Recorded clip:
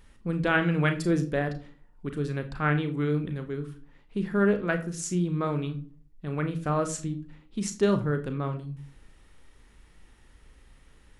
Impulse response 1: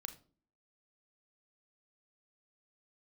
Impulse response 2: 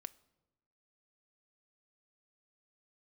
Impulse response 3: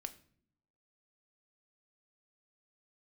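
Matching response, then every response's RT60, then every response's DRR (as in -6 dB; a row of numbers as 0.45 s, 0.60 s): 1; 0.45 s, 1.0 s, no single decay rate; 7.5 dB, 15.0 dB, 8.5 dB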